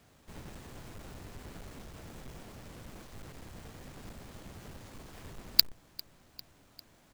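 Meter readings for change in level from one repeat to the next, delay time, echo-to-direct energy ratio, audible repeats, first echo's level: -4.5 dB, 399 ms, -19.5 dB, 3, -21.5 dB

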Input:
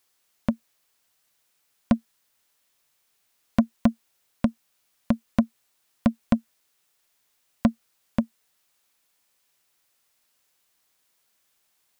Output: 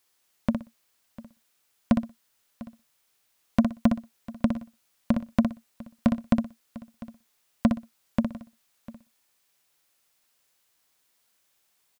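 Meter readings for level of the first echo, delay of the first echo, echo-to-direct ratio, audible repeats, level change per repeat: -6.5 dB, 61 ms, -6.0 dB, 5, no regular repeats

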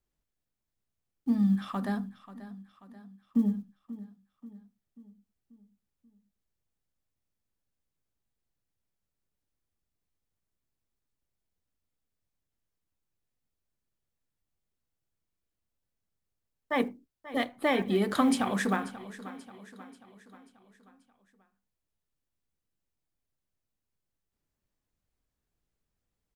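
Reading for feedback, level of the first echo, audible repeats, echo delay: 51%, -16.0 dB, 4, 536 ms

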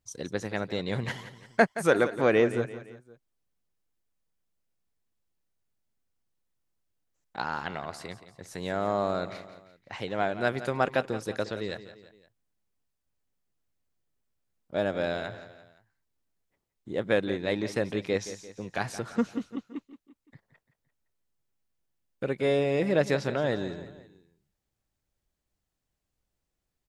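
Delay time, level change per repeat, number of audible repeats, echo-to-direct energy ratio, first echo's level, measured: 172 ms, -6.5 dB, 3, -12.5 dB, -13.5 dB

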